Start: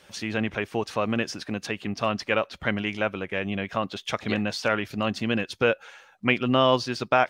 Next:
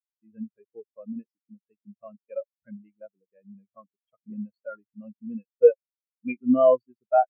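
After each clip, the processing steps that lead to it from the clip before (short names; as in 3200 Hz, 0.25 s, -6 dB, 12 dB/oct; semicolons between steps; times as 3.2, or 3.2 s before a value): de-hum 47.9 Hz, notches 3; spectral expander 4:1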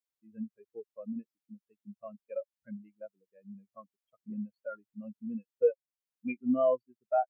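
compressor 1.5:1, threshold -39 dBFS, peak gain reduction 10.5 dB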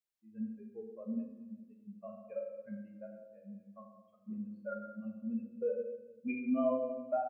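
limiter -23 dBFS, peak gain reduction 7.5 dB; doubler 37 ms -11.5 dB; shoebox room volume 790 m³, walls mixed, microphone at 1.3 m; gain -4 dB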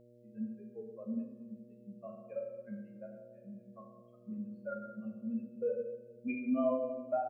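buzz 120 Hz, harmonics 5, -61 dBFS 0 dB/oct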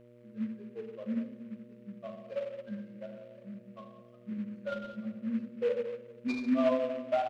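noise-modulated delay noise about 1700 Hz, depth 0.031 ms; gain +4 dB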